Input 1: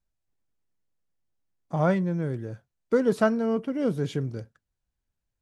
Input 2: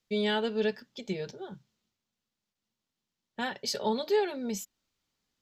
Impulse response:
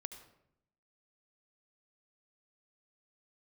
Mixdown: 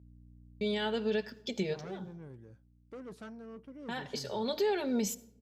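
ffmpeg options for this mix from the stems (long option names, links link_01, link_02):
-filter_complex "[0:a]bandreject=frequency=660:width=12,aeval=exprs='(tanh(15.8*val(0)+0.3)-tanh(0.3))/15.8':channel_layout=same,aeval=exprs='val(0)+0.00562*(sin(2*PI*60*n/s)+sin(2*PI*2*60*n/s)/2+sin(2*PI*3*60*n/s)/3+sin(2*PI*4*60*n/s)/4+sin(2*PI*5*60*n/s)/5)':channel_layout=same,volume=-8.5dB,afade=type=out:start_time=0.87:duration=0.63:silence=0.354813,asplit=2[link_01][link_02];[1:a]agate=range=-33dB:threshold=-49dB:ratio=3:detection=peak,alimiter=level_in=3dB:limit=-24dB:level=0:latency=1:release=229,volume=-3dB,adelay=500,volume=2.5dB,asplit=2[link_03][link_04];[link_04]volume=-6.5dB[link_05];[link_02]apad=whole_len=260903[link_06];[link_03][link_06]sidechaincompress=threshold=-54dB:ratio=8:attack=7.9:release=158[link_07];[2:a]atrim=start_sample=2205[link_08];[link_05][link_08]afir=irnorm=-1:irlink=0[link_09];[link_01][link_07][link_09]amix=inputs=3:normalize=0,highpass=45"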